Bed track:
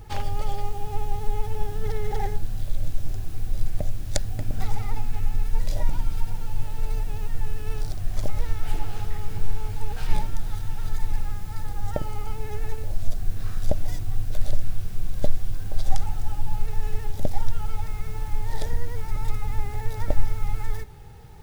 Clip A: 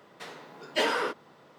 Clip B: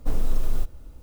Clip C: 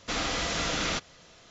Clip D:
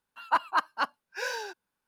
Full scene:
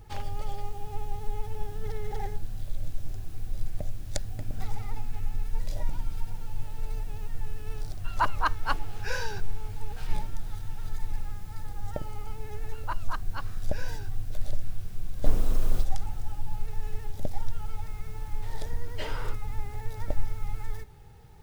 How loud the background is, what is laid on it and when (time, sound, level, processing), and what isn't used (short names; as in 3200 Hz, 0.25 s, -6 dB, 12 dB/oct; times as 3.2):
bed track -6.5 dB
7.88 add D -1 dB
12.56 add D -10.5 dB
15.19 add B -0.5 dB
18.22 add A -12 dB
not used: C